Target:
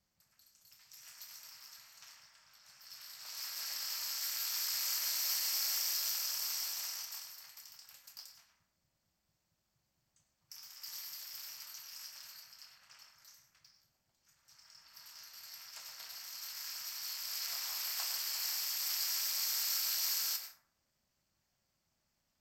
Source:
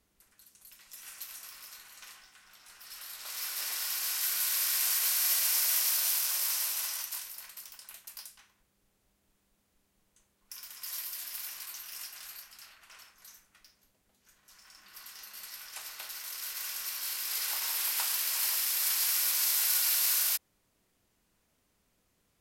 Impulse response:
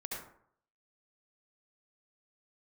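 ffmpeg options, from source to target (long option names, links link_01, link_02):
-filter_complex "[0:a]asplit=2[link_01][link_02];[1:a]atrim=start_sample=2205,lowshelf=frequency=170:gain=-7,adelay=27[link_03];[link_02][link_03]afir=irnorm=-1:irlink=0,volume=-5dB[link_04];[link_01][link_04]amix=inputs=2:normalize=0,aeval=exprs='val(0)*sin(2*PI*130*n/s)':channel_layout=same,superequalizer=6b=0.501:7b=0.447:14b=2.24:15b=1.41:16b=0.316,volume=-6dB"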